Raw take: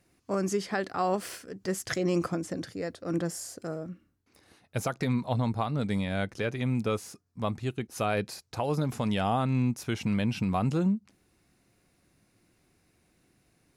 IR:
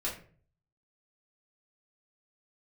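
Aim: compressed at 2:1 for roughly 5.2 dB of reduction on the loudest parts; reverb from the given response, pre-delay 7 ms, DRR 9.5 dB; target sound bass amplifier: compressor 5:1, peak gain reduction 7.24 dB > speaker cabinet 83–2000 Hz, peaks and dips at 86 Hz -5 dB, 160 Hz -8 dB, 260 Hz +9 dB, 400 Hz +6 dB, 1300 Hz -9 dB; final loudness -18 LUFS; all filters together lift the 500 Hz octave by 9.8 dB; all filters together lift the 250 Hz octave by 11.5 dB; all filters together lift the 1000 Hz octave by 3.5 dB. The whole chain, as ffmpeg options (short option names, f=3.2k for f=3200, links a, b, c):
-filter_complex "[0:a]equalizer=f=250:t=o:g=7,equalizer=f=500:t=o:g=5,equalizer=f=1k:t=o:g=3.5,acompressor=threshold=-27dB:ratio=2,asplit=2[a][b];[1:a]atrim=start_sample=2205,adelay=7[c];[b][c]afir=irnorm=-1:irlink=0,volume=-13.5dB[d];[a][d]amix=inputs=2:normalize=0,acompressor=threshold=-28dB:ratio=5,highpass=f=83:w=0.5412,highpass=f=83:w=1.3066,equalizer=f=86:t=q:w=4:g=-5,equalizer=f=160:t=q:w=4:g=-8,equalizer=f=260:t=q:w=4:g=9,equalizer=f=400:t=q:w=4:g=6,equalizer=f=1.3k:t=q:w=4:g=-9,lowpass=f=2k:w=0.5412,lowpass=f=2k:w=1.3066,volume=12.5dB"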